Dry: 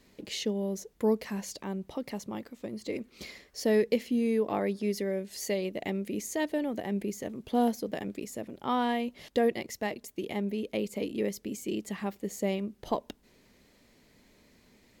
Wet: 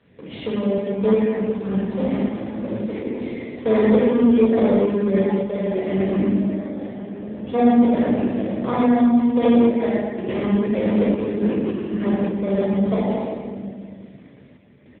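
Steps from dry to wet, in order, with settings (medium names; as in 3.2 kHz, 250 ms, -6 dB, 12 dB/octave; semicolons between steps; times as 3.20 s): low-pass that closes with the level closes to 1 kHz, closed at -26 dBFS; in parallel at -5 dB: sample-and-hold 31×; on the sum: delay 118 ms -7 dB; 6.34–7.47 s: level held to a coarse grid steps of 21 dB; simulated room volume 3100 m³, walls mixed, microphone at 5.6 m; random-step tremolo; Chebyshev shaper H 2 -16 dB, 5 -20 dB, 8 -38 dB, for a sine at -4.5 dBFS; AMR-NB 7.95 kbps 8 kHz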